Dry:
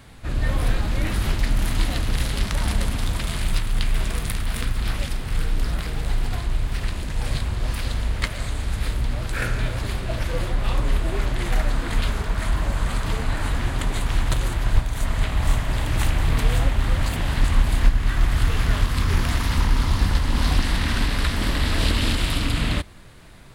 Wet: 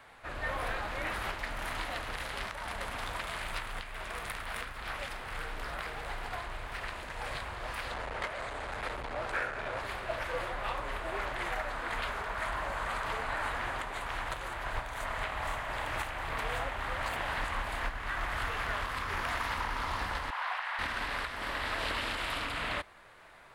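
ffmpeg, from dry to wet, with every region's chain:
-filter_complex "[0:a]asettb=1/sr,asplit=3[a][b][c];[a]atrim=end=7.914[d];[b]atrim=start=7.91:end=9.81,asetpts=PTS-STARTPTS,afade=t=in:d=0.004:c=qsin,afade=t=out:st=1.896:d=0.004:c=qsin,lowpass=10k,asoftclip=type=hard:threshold=-20dB,equalizer=f=470:t=o:w=2.7:g=6[e];[c]atrim=start=9.806[f];[d][e]acrossfade=d=0.004:c1=hsin:c2=qsin[g];[g][f]acrossfade=d=0.004:c1=qsin:c2=hsin,asettb=1/sr,asplit=3[h][i][j];[h]atrim=end=20.304[k];[i]atrim=start=20.3:end=20.79,asetpts=PTS-STARTPTS,afade=t=in:d=0.004:c=qsin,afade=t=out:st=0.486:d=0.004:c=qsin,acrossover=split=3100[l][m];[m]acompressor=threshold=-48dB:ratio=4:attack=1:release=60[n];[l][n]amix=inputs=2:normalize=0,highpass=f=740:w=0.5412,highpass=f=740:w=1.3066[o];[j]atrim=start=20.786[p];[k][o]acrossfade=d=0.004:c1=hsin:c2=qsin[q];[q][p]acrossfade=d=0.004:c1=qsin:c2=hsin,acrossover=split=520 2400:gain=0.0891 1 0.224[r][s][t];[r][s][t]amix=inputs=3:normalize=0,alimiter=limit=-22.5dB:level=0:latency=1:release=487"

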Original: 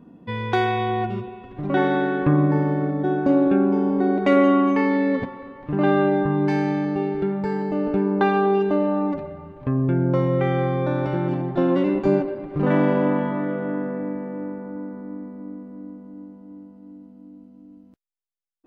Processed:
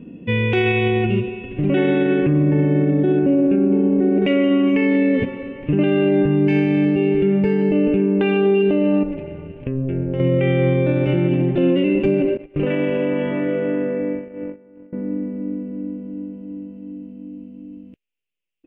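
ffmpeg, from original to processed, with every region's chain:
-filter_complex "[0:a]asettb=1/sr,asplit=3[a][b][c];[a]atrim=end=3.194[d];[b]atrim=start=3.19:end=4.22,asetpts=PTS-STARTPTS,afade=t=in:d=0.004:c=qsin,afade=t=out:st=1.026:d=0.004:c=qsin,highshelf=f=3.8k:g=-12,adynamicsmooth=sensitivity=1:basefreq=3.5k[e];[c]atrim=start=4.216[f];[d][e]acrossfade=d=0.004:c1=hsin:c2=qsin[g];[g][f]acrossfade=d=0.004:c1=qsin:c2=hsin,asettb=1/sr,asplit=3[h][i][j];[h]atrim=end=9.034[k];[i]atrim=start=9.03:end=10.2,asetpts=PTS-STARTPTS,afade=t=in:d=0.004:c=qsin,afade=t=out:st=1.166:d=0.004:c=qsin,acompressor=threshold=-32dB:ratio=2:attack=3.2:release=140:knee=1:detection=peak,tremolo=f=270:d=0.71[l];[j]atrim=start=10.196[m];[k][l]acrossfade=d=0.004:c1=hsin:c2=qsin[n];[n][m]acrossfade=d=0.004:c1=qsin:c2=hsin,asettb=1/sr,asplit=3[o][p][q];[o]atrim=end=12.374[r];[p]atrim=start=12.37:end=14.93,asetpts=PTS-STARTPTS,afade=t=in:d=0.004:c=qsin,afade=t=out:st=2.556:d=0.004:c=qsin,equalizer=f=190:t=o:w=1.1:g=-9.5,acompressor=threshold=-24dB:ratio=6:attack=3.2:release=140:knee=1:detection=peak,agate=range=-19dB:threshold=-34dB:ratio=16:release=100:detection=peak[s];[q]atrim=start=14.926[t];[r][s]acrossfade=d=0.004:c1=hsin:c2=qsin[u];[u][t]acrossfade=d=0.004:c1=qsin:c2=hsin,firequalizer=gain_entry='entry(510,0);entry(730,-12);entry(1100,-15);entry(2700,10);entry(4000,-13)':delay=0.05:min_phase=1,alimiter=level_in=18dB:limit=-1dB:release=50:level=0:latency=1,volume=-8.5dB"

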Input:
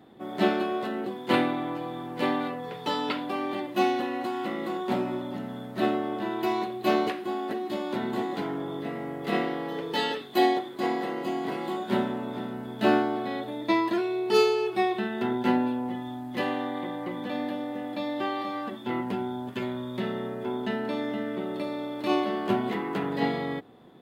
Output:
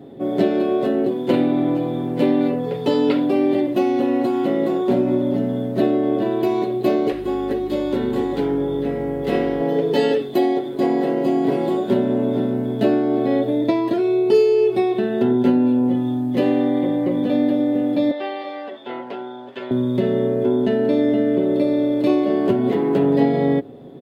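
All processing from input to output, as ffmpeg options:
-filter_complex "[0:a]asettb=1/sr,asplit=3[a][b][c];[a]atrim=end=7.124[d];[b]atrim=start=7.12:end=9.61,asetpts=PTS-STARTPTS,afade=t=in:d=0.004:c=qsin,afade=t=out:st=2.486:d=0.004:c=qsin,aeval=exprs='val(0)+0.00631*(sin(2*PI*50*n/s)+sin(2*PI*2*50*n/s)/2+sin(2*PI*3*50*n/s)/3+sin(2*PI*4*50*n/s)/4+sin(2*PI*5*50*n/s)/5)':c=same,lowshelf=f=480:g=-6,bandreject=f=670:w=7.2[e];[c]atrim=start=9.606[f];[d][e]acrossfade=d=0.004:c1=hsin:c2=qsin[g];[g][f]acrossfade=d=0.004:c1=qsin:c2=hsin,asettb=1/sr,asplit=3[h][i][j];[h]atrim=end=18.114[k];[i]atrim=start=18.11:end=19.71,asetpts=PTS-STARTPTS,afade=t=in:d=0.004:c=qsin,afade=t=out:st=1.596:d=0.004:c=qsin,highpass=f=330:p=1,acrossover=split=540 5000:gain=0.126 1 0.0891[l][m][n];[l][m][n]amix=inputs=3:normalize=0[o];[j]atrim=start=19.706[p];[k][o]acrossfade=d=0.004:c1=hsin:c2=qsin[q];[q][p]acrossfade=d=0.004:c1=qsin:c2=hsin,lowshelf=f=750:t=q:w=1.5:g=9.5,acompressor=threshold=-17dB:ratio=6,aecho=1:1:7.3:0.47,volume=3dB"

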